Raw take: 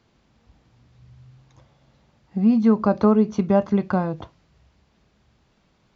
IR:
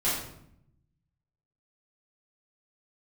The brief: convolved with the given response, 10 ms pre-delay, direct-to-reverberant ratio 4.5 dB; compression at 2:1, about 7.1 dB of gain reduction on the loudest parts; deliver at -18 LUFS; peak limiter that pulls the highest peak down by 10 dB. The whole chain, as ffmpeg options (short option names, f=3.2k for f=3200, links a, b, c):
-filter_complex "[0:a]acompressor=threshold=-25dB:ratio=2,alimiter=limit=-22dB:level=0:latency=1,asplit=2[a][b];[1:a]atrim=start_sample=2205,adelay=10[c];[b][c]afir=irnorm=-1:irlink=0,volume=-14.5dB[d];[a][d]amix=inputs=2:normalize=0,volume=11dB"